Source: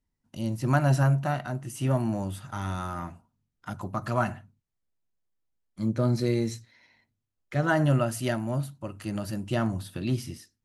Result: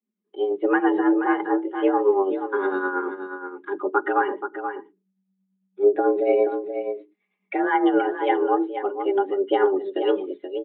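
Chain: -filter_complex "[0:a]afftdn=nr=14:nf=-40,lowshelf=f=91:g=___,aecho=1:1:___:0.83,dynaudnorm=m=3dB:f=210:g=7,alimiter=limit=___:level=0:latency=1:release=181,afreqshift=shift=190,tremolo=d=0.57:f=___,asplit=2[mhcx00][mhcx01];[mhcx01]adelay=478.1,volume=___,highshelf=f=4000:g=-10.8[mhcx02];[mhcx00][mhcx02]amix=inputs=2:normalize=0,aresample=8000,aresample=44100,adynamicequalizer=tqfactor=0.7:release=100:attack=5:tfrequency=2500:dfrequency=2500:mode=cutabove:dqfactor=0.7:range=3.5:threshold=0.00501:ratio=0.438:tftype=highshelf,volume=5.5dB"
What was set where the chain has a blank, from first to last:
5.5, 4.8, -14.5dB, 9, -8dB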